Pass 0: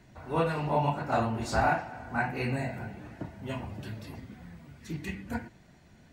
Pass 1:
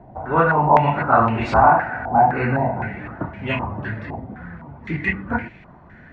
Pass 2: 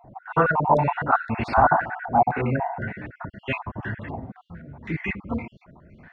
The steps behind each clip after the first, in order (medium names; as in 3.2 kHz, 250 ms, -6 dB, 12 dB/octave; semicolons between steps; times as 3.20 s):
in parallel at -1 dB: peak limiter -25 dBFS, peak gain reduction 10 dB; on the sum: step-sequenced low-pass 3.9 Hz 780–2400 Hz; trim +5 dB
random holes in the spectrogram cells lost 45%; trim -2.5 dB